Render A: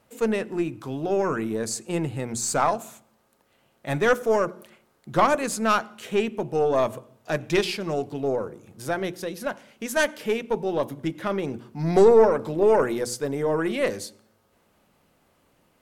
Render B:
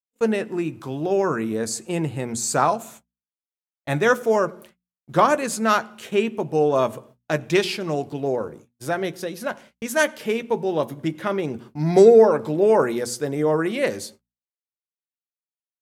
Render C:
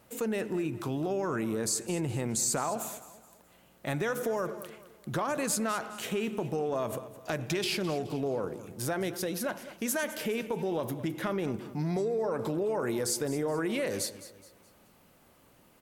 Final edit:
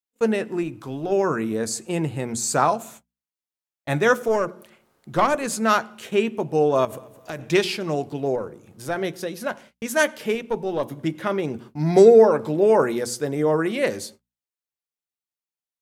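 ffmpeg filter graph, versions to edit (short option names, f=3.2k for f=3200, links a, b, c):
-filter_complex "[0:a]asplit=4[a][b][c][d];[1:a]asplit=6[e][f][g][h][i][j];[e]atrim=end=0.632[k];[a]atrim=start=0.628:end=1.122[l];[f]atrim=start=1.118:end=4.282[m];[b]atrim=start=4.278:end=5.462[n];[g]atrim=start=5.458:end=6.852[o];[2:a]atrim=start=6.848:end=7.412[p];[h]atrim=start=7.408:end=8.362[q];[c]atrim=start=8.358:end=8.962[r];[i]atrim=start=8.958:end=10.352[s];[d]atrim=start=10.348:end=10.912[t];[j]atrim=start=10.908[u];[k][l]acrossfade=d=0.004:c1=hsin:c2=hsin[v];[v][m]acrossfade=d=0.004:c1=hsin:c2=hsin[w];[w][n]acrossfade=d=0.004:c1=hsin:c2=hsin[x];[x][o]acrossfade=d=0.004:c1=hsin:c2=hsin[y];[y][p]acrossfade=d=0.004:c1=hsin:c2=hsin[z];[z][q]acrossfade=d=0.004:c1=hsin:c2=hsin[aa];[aa][r]acrossfade=d=0.004:c1=hsin:c2=hsin[ab];[ab][s]acrossfade=d=0.004:c1=hsin:c2=hsin[ac];[ac][t]acrossfade=d=0.004:c1=hsin:c2=hsin[ad];[ad][u]acrossfade=d=0.004:c1=hsin:c2=hsin"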